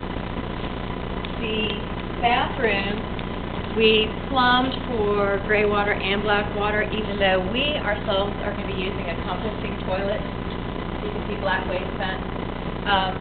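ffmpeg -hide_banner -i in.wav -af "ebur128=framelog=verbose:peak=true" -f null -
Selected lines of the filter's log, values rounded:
Integrated loudness:
  I:         -23.6 LUFS
  Threshold: -33.6 LUFS
Loudness range:
  LRA:         6.0 LU
  Threshold: -43.2 LUFS
  LRA low:   -27.0 LUFS
  LRA high:  -21.0 LUFS
True peak:
  Peak:       -4.9 dBFS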